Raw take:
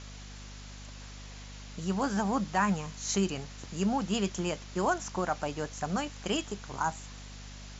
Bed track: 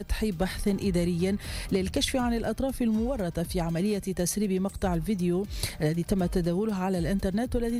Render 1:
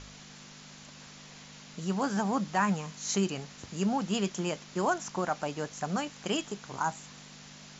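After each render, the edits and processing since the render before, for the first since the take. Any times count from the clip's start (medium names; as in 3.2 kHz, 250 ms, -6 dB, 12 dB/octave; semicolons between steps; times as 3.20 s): de-hum 50 Hz, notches 2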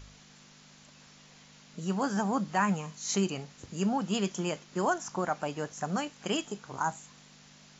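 noise print and reduce 6 dB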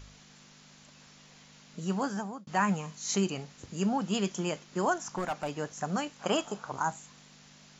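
1.96–2.47 s: fade out; 5.07–5.54 s: hard clipper -27 dBFS; 6.19–6.72 s: high-order bell 880 Hz +10 dB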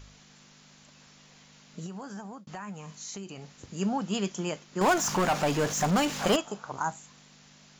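1.86–3.60 s: compression, threshold -37 dBFS; 4.81–6.36 s: power-law waveshaper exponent 0.5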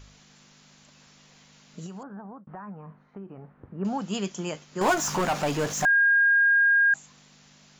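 2.03–3.85 s: low-pass 1.5 kHz 24 dB/octave; 4.53–5.21 s: doubling 13 ms -6.5 dB; 5.85–6.94 s: bleep 1.62 kHz -16.5 dBFS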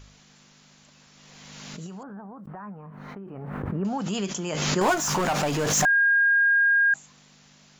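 swell ahead of each attack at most 26 dB/s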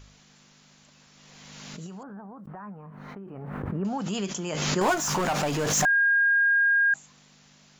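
trim -1.5 dB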